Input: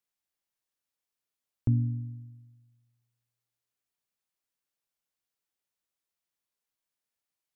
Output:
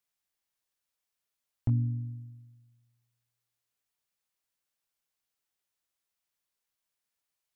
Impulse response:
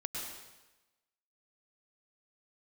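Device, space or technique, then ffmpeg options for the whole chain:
clipper into limiter: -af "asoftclip=type=hard:threshold=0.133,alimiter=limit=0.1:level=0:latency=1:release=398,equalizer=f=280:w=0.57:g=-3.5,volume=1.33"

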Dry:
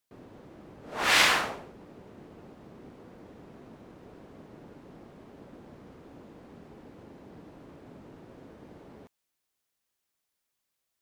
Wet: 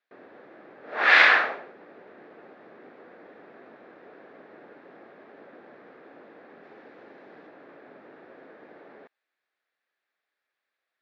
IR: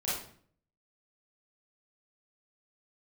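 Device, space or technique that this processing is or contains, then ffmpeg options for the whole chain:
phone earpiece: -filter_complex "[0:a]highpass=460,equalizer=f=970:t=q:w=4:g=-6,equalizer=f=1700:t=q:w=4:g=6,equalizer=f=3000:t=q:w=4:g=-8,lowpass=f=3400:w=0.5412,lowpass=f=3400:w=1.3066,asettb=1/sr,asplit=3[s0][s1][s2];[s0]atrim=end=6.634[s3];[s1]atrim=start=6.63:end=7.47,asetpts=PTS-STARTPTS,afade=t=in:d=0.004:c=qsin,afade=t=out:st=0.836:d=0.004:c=qsin,highshelf=f=3800:g=6.5[s4];[s2]atrim=start=7.466[s5];[s3][s4]acrossfade=d=0.004:c1=hsin:c2=qsin[s6];[s6][s5]acrossfade=d=0.004:c1=qsin:c2=hsin,volume=2"

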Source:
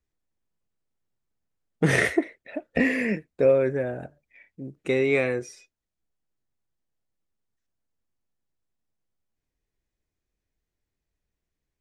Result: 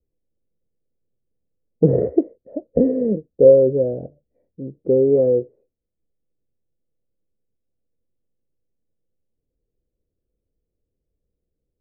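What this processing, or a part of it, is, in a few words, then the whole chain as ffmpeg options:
under water: -af "lowpass=f=540:w=0.5412,lowpass=f=540:w=1.3066,equalizer=f=500:t=o:w=0.36:g=8.5,volume=1.88"

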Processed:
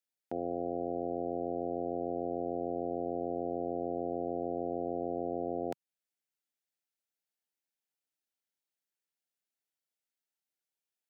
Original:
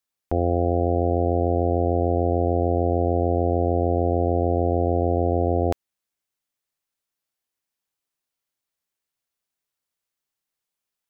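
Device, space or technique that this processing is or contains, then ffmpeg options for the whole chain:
PA system with an anti-feedback notch: -af "highpass=f=150:w=0.5412,highpass=f=150:w=1.3066,asuperstop=centerf=1100:order=4:qfactor=3.4,alimiter=limit=0.15:level=0:latency=1:release=393,volume=0.398"

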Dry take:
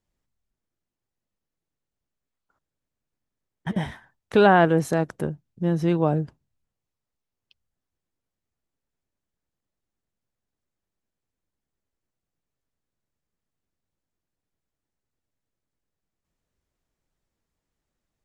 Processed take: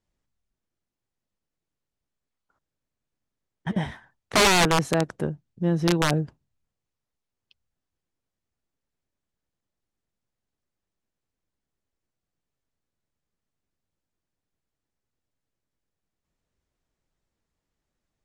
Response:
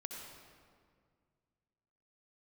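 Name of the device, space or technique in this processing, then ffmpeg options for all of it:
overflowing digital effects unit: -af "aeval=exprs='(mod(4.22*val(0)+1,2)-1)/4.22':c=same,lowpass=9100"

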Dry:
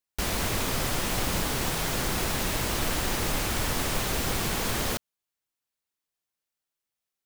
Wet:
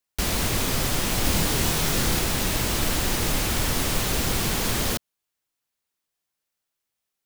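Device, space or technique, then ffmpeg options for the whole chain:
one-band saturation: -filter_complex "[0:a]asettb=1/sr,asplit=3[s0][s1][s2];[s0]atrim=end=1.224[s3];[s1]atrim=start=1.22:end=2.19,asetpts=PTS-STARTPTS,afade=t=in:d=0.004:c=qsin,afade=t=out:st=0.966:d=0.004:c=qsin,asplit=2[s4][s5];[s5]adelay=26,volume=0.708[s6];[s4][s6]amix=inputs=2:normalize=0,atrim=end_sample=42777[s7];[s2]atrim=start=2.186[s8];[s3][s7]acrossfade=d=0.004:c1=hsin:c2=qsin[s9];[s9][s8]acrossfade=d=0.004:c1=qsin:c2=hsin,acrossover=split=380|2500[s10][s11][s12];[s11]asoftclip=type=tanh:threshold=0.02[s13];[s10][s13][s12]amix=inputs=3:normalize=0,volume=1.68"

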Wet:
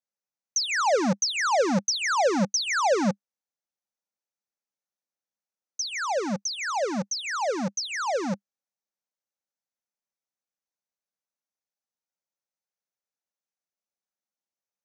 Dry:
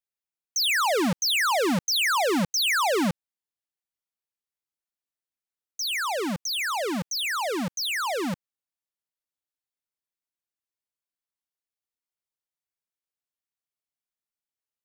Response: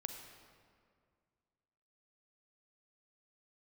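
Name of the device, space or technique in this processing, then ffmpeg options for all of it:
television speaker: -af "highpass=160,equalizer=f=200:t=q:w=4:g=9,equalizer=f=550:t=q:w=4:g=9,equalizer=f=810:t=q:w=4:g=6,equalizer=f=1400:t=q:w=4:g=3,equalizer=f=3100:t=q:w=4:g=-8,equalizer=f=6100:t=q:w=4:g=8,lowpass=f=7100:w=0.5412,lowpass=f=7100:w=1.3066,volume=0.668"

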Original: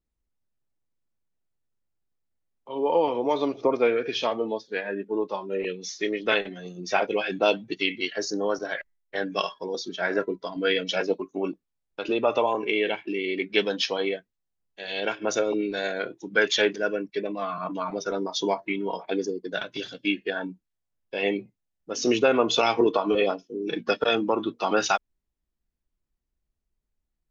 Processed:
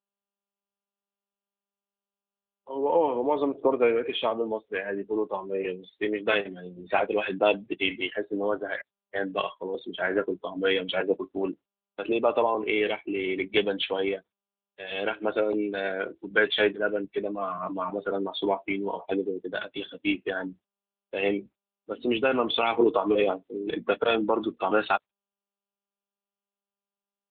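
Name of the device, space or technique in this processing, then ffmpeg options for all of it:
mobile call with aggressive noise cancelling: -filter_complex "[0:a]asplit=3[s0][s1][s2];[s0]afade=t=out:st=21.94:d=0.02[s3];[s1]equalizer=f=470:t=o:w=1.6:g=-4.5,afade=t=in:st=21.94:d=0.02,afade=t=out:st=22.71:d=0.02[s4];[s2]afade=t=in:st=22.71:d=0.02[s5];[s3][s4][s5]amix=inputs=3:normalize=0,highpass=150,afftdn=nr=19:nf=-42" -ar 8000 -c:a libopencore_amrnb -b:a 10200

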